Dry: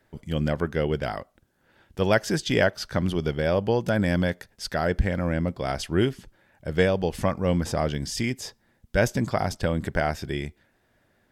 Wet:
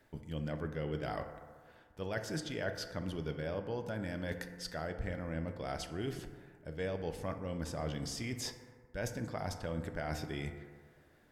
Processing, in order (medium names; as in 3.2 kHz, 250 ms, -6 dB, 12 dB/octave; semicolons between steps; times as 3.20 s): reverse; compression 6:1, threshold -35 dBFS, peak gain reduction 18 dB; reverse; bucket-brigade echo 62 ms, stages 1024, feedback 72%, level -15 dB; FDN reverb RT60 1.7 s, low-frequency decay 0.9×, high-frequency decay 0.35×, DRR 8 dB; trim -1.5 dB